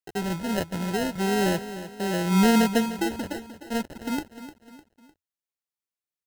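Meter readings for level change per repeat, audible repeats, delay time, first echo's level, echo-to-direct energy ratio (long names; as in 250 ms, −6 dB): −7.0 dB, 3, 303 ms, −13.0 dB, −12.0 dB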